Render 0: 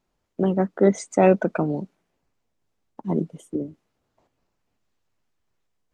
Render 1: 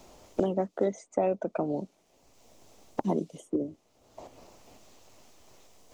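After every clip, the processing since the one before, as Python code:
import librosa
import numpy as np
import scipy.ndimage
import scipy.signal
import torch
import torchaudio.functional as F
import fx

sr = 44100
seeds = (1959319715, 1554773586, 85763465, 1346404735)

y = fx.graphic_eq_15(x, sr, hz=(160, 630, 1600, 6300), db=(-6, 5, -8, 5))
y = fx.band_squash(y, sr, depth_pct=100)
y = y * 10.0 ** (-7.0 / 20.0)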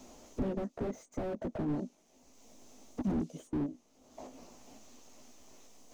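y = fx.chorus_voices(x, sr, voices=2, hz=0.6, base_ms=16, depth_ms=3.6, mix_pct=30)
y = fx.graphic_eq_31(y, sr, hz=(100, 250, 6300), db=(-11, 11, 7))
y = fx.slew_limit(y, sr, full_power_hz=8.8)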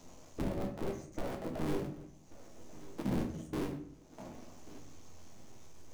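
y = fx.cycle_switch(x, sr, every=3, mode='muted')
y = fx.echo_feedback(y, sr, ms=1136, feedback_pct=23, wet_db=-18.5)
y = fx.room_shoebox(y, sr, seeds[0], volume_m3=86.0, walls='mixed', distance_m=0.62)
y = y * 10.0 ** (-2.5 / 20.0)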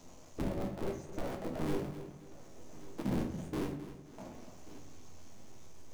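y = fx.echo_feedback(x, sr, ms=263, feedback_pct=37, wet_db=-13)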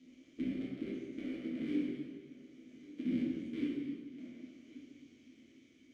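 y = fx.vowel_filter(x, sr, vowel='i')
y = fx.rev_plate(y, sr, seeds[1], rt60_s=1.3, hf_ratio=0.9, predelay_ms=0, drr_db=-3.0)
y = y * 10.0 ** (6.0 / 20.0)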